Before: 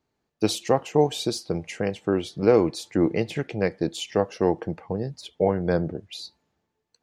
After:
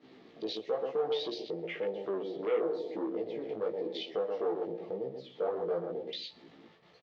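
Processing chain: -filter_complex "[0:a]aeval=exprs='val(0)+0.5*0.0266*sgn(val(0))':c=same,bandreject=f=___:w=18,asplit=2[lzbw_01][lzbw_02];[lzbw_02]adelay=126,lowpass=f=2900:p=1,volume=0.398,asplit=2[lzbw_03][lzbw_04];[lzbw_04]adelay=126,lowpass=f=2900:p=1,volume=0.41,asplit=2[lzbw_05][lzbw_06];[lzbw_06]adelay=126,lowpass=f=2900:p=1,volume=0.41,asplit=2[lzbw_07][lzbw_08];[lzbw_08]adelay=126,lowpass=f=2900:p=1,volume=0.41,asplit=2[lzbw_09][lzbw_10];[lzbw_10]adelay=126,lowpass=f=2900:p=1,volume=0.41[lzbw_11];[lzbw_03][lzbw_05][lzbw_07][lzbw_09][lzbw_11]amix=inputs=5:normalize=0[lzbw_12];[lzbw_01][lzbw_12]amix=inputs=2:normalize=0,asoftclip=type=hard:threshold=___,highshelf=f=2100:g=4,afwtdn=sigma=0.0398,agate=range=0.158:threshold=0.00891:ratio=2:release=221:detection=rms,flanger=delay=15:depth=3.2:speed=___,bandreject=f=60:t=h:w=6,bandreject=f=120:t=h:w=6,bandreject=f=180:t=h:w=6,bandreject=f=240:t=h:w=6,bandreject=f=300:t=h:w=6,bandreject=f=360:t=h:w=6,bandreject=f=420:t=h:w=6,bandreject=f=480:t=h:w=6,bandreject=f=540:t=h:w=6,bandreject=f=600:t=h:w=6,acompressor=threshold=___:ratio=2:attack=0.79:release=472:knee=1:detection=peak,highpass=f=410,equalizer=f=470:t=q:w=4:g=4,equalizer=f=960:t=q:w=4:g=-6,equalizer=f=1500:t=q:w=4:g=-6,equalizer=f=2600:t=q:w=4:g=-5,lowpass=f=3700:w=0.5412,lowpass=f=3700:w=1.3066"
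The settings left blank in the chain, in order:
1500, 0.119, 0.98, 0.0355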